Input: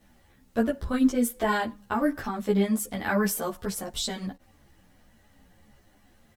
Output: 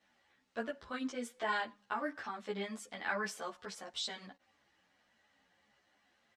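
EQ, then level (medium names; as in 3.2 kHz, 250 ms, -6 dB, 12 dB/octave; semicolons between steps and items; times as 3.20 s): high-pass 1.5 kHz 6 dB/octave; distance through air 100 m; treble shelf 12 kHz -9 dB; -2.5 dB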